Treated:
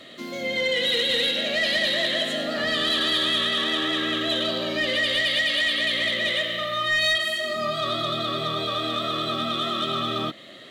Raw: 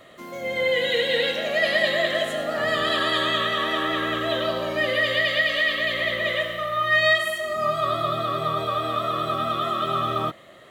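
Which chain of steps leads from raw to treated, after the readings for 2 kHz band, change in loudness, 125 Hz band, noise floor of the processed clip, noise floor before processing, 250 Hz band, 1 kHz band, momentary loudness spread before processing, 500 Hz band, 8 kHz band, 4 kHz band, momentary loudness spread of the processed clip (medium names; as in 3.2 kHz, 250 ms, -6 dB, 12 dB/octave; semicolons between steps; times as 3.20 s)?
-2.0 dB, 0.0 dB, -3.0 dB, -44 dBFS, -47 dBFS, +2.0 dB, -5.0 dB, 5 LU, -4.0 dB, +4.0 dB, +4.5 dB, 5 LU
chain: graphic EQ 125/250/1000/4000 Hz +4/+12/-7/+10 dB; compression 1.5:1, threshold -27 dBFS, peak gain reduction 5.5 dB; overdrive pedal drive 10 dB, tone 6.5 kHz, clips at -13 dBFS; trim -2 dB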